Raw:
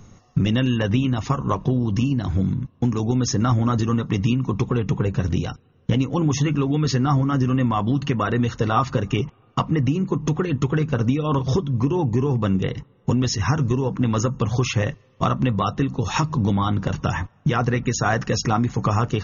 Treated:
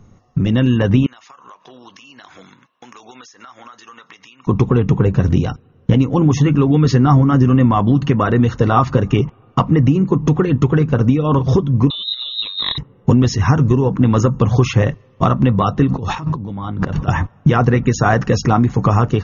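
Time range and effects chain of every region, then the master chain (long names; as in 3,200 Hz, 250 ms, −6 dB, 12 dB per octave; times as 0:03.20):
0:01.06–0:04.47: high-pass filter 1,500 Hz + downward compressor 16 to 1, threshold −43 dBFS
0:11.90–0:12.78: compressor whose output falls as the input rises −24 dBFS, ratio −0.5 + voice inversion scrambler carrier 3,900 Hz
0:15.87–0:17.08: low-pass filter 5,300 Hz + compressor whose output falls as the input rises −31 dBFS
whole clip: high-shelf EQ 2,200 Hz −9.5 dB; automatic gain control gain up to 11 dB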